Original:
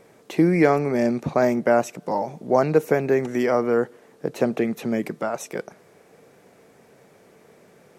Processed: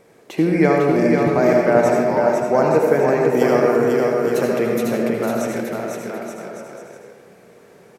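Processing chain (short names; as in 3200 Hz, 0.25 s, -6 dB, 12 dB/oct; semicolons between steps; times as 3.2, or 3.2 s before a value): 3.37–4.91 high shelf 5600 Hz +11 dB; bouncing-ball echo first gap 0.5 s, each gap 0.75×, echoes 5; reverb RT60 0.95 s, pre-delay 71 ms, DRR 0.5 dB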